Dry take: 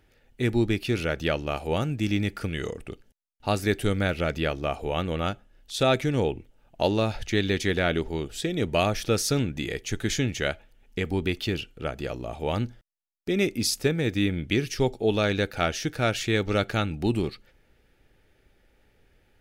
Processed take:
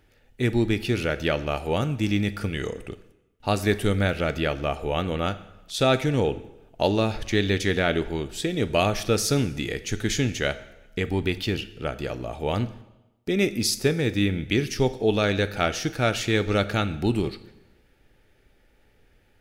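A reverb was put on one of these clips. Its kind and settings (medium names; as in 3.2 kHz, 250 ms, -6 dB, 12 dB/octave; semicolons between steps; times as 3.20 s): plate-style reverb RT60 0.98 s, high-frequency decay 0.9×, DRR 12.5 dB; trim +1.5 dB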